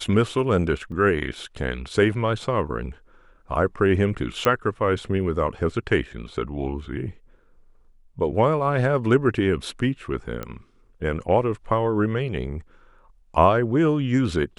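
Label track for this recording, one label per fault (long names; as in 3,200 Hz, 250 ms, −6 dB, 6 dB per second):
0.920000	0.920000	drop-out 2.1 ms
4.450000	4.450000	click −8 dBFS
10.430000	10.430000	click −17 dBFS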